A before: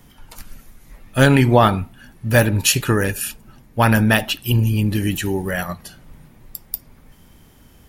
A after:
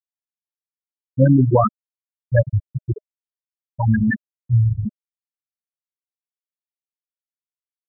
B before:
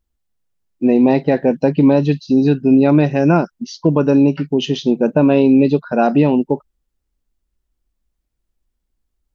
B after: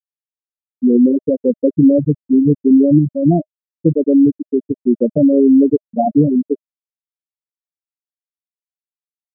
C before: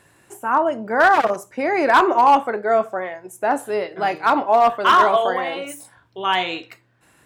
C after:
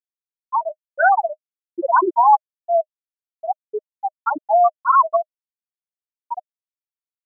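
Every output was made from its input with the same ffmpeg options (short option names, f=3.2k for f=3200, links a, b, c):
-af "afftfilt=real='re*gte(hypot(re,im),1.26)':imag='im*gte(hypot(re,im),1.26)':win_size=1024:overlap=0.75,bandreject=f=620:w=14,volume=2dB"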